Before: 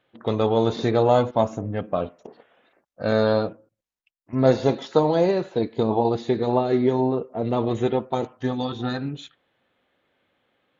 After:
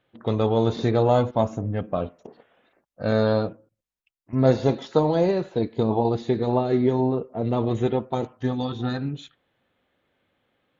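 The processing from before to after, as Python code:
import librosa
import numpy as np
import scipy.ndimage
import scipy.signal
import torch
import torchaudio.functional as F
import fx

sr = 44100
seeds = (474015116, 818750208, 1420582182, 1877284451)

y = fx.low_shelf(x, sr, hz=180.0, db=7.5)
y = F.gain(torch.from_numpy(y), -2.5).numpy()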